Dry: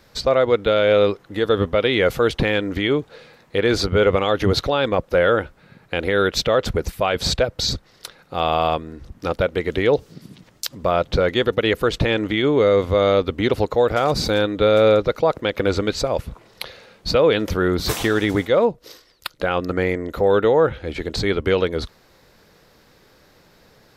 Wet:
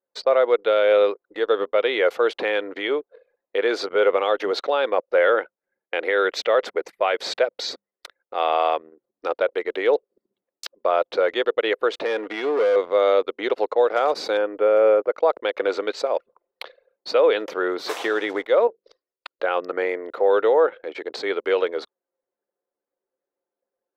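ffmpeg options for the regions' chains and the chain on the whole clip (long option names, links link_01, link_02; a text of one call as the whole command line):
ffmpeg -i in.wav -filter_complex "[0:a]asettb=1/sr,asplit=3[link_01][link_02][link_03];[link_01]atrim=end=5.174[link_04];[link_02]atrim=start=5.17:end=8.94,asetpts=PTS-STARTPTS,afade=type=in:duration=0.004:curve=qsin,afade=type=out:start_time=3.766:duration=0.004:curve=qsin,agate=range=-33dB:threshold=-50dB:ratio=3:release=100:detection=peak,equalizer=frequency=2000:width=3.7:gain=5,bandreject=frequency=50:width_type=h:width=6,bandreject=frequency=100:width_type=h:width=6,bandreject=frequency=150:width_type=h:width=6,bandreject=frequency=200:width_type=h:width=6,bandreject=frequency=250:width_type=h:width=6[link_05];[link_03]atrim=start=8.936[link_06];[link_04][link_05]acrossfade=duration=0.004:curve1=hsin:curve2=qsin[link_07];[link_07][link_06]acrossfade=duration=0.004:curve1=qsin:curve2=hsin,asettb=1/sr,asplit=3[link_08][link_09][link_10];[link_08]atrim=end=12.054[link_11];[link_09]atrim=start=12.05:end=12.76,asetpts=PTS-STARTPTS,afade=type=in:duration=0.004:curve=qsin,afade=type=out:start_time=0.706:duration=0.004:curve=qsin,acrossover=split=2600[link_12][link_13];[link_13]acompressor=threshold=-32dB:ratio=4:attack=1:release=60[link_14];[link_12][link_14]amix=inputs=2:normalize=0,asoftclip=type=hard:threshold=-16dB,aecho=1:1:4.2:0.34,atrim=end_sample=31311[link_15];[link_10]atrim=start=12.756[link_16];[link_11][link_15]acrossfade=duration=0.004:curve1=hsin:curve2=qsin[link_17];[link_17][link_16]acrossfade=duration=0.004:curve1=qsin:curve2=hsin,asettb=1/sr,asplit=3[link_18][link_19][link_20];[link_18]atrim=end=14.374[link_21];[link_19]atrim=start=14.37:end=15.12,asetpts=PTS-STARTPTS,afade=type=in:duration=0.004:curve=qsin,afade=type=out:start_time=0.746:duration=0.004:curve=qsin,asuperstop=centerf=3800:order=8:qfactor=4.6,highshelf=frequency=2200:gain=-10[link_22];[link_20]atrim=start=15.116[link_23];[link_21][link_22]acrossfade=duration=0.004:curve1=hsin:curve2=qsin[link_24];[link_24][link_23]acrossfade=duration=0.004:curve1=qsin:curve2=hsin,asettb=1/sr,asplit=3[link_25][link_26][link_27];[link_25]atrim=end=18.674[link_28];[link_26]atrim=start=18.67:end=19.38,asetpts=PTS-STARTPTS,afade=type=in:duration=0.004:curve=qsin,afade=type=out:start_time=0.706:duration=0.004:curve=qsin,lowpass=7400,acompressor=threshold=-31dB:ratio=2:attack=3.2:release=140:knee=1:detection=peak,bandreject=frequency=50:width_type=h:width=6,bandreject=frequency=100:width_type=h:width=6,bandreject=frequency=150:width_type=h:width=6,bandreject=frequency=200:width_type=h:width=6,bandreject=frequency=250:width_type=h:width=6,bandreject=frequency=300:width_type=h:width=6,bandreject=frequency=350:width_type=h:width=6,bandreject=frequency=400:width_type=h:width=6,bandreject=frequency=450:width_type=h:width=6[link_29];[link_27]atrim=start=19.376[link_30];[link_28][link_29]acrossfade=duration=0.004:curve1=hsin:curve2=qsin[link_31];[link_31][link_30]acrossfade=duration=0.004:curve1=qsin:curve2=hsin,highpass=frequency=400:width=0.5412,highpass=frequency=400:width=1.3066,anlmdn=1.58,aemphasis=mode=reproduction:type=75kf" out.wav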